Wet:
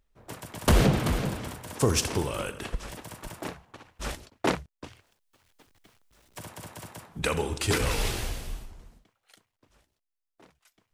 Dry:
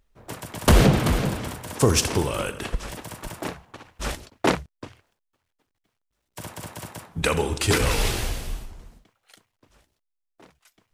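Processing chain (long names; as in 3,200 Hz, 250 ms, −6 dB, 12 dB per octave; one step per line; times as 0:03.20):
0:04.84–0:07.19: multiband upward and downward compressor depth 70%
level −5 dB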